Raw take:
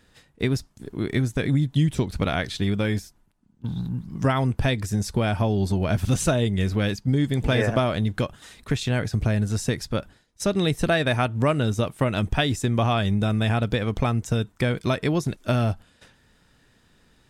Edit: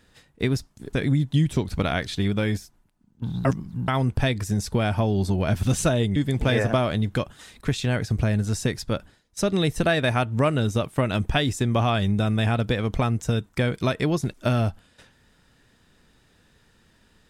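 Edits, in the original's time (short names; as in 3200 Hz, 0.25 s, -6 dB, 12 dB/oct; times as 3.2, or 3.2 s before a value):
0.93–1.35 cut
3.87–4.3 reverse
6.58–7.19 cut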